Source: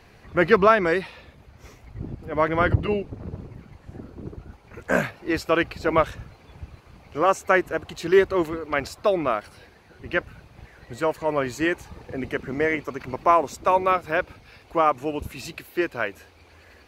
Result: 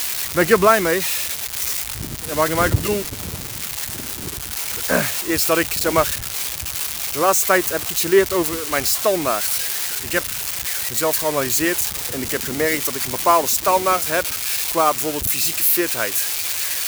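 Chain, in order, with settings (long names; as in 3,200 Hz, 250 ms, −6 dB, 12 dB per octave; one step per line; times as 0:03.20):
spike at every zero crossing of −14.5 dBFS
level +2.5 dB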